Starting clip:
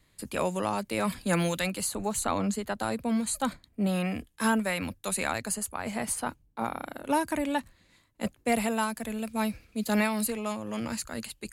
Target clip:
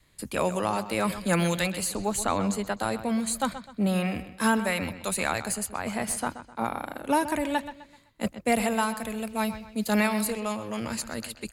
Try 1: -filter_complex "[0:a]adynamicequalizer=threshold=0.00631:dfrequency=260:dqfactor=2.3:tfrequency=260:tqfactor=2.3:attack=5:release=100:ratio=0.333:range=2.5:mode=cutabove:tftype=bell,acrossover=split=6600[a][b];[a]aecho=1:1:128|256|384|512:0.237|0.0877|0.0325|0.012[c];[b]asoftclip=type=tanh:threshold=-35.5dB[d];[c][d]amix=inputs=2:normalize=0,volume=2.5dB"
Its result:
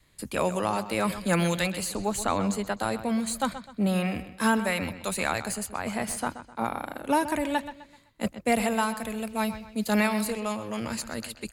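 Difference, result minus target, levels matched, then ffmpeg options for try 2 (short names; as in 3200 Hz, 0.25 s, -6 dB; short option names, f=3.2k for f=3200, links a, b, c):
soft clip: distortion +8 dB
-filter_complex "[0:a]adynamicequalizer=threshold=0.00631:dfrequency=260:dqfactor=2.3:tfrequency=260:tqfactor=2.3:attack=5:release=100:ratio=0.333:range=2.5:mode=cutabove:tftype=bell,acrossover=split=6600[a][b];[a]aecho=1:1:128|256|384|512:0.237|0.0877|0.0325|0.012[c];[b]asoftclip=type=tanh:threshold=-27dB[d];[c][d]amix=inputs=2:normalize=0,volume=2.5dB"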